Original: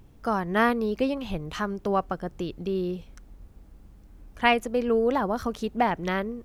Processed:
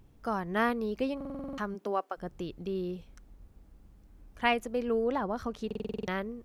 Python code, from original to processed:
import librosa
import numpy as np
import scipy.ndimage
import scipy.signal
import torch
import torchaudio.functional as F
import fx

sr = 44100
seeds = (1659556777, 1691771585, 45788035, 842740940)

y = fx.highpass(x, sr, hz=fx.line((1.74, 160.0), (2.16, 440.0)), slope=24, at=(1.74, 2.16), fade=0.02)
y = fx.high_shelf(y, sr, hz=7800.0, db=-9.5, at=(5.04, 5.68))
y = fx.buffer_glitch(y, sr, at_s=(1.16, 5.66), block=2048, repeats=8)
y = y * 10.0 ** (-6.0 / 20.0)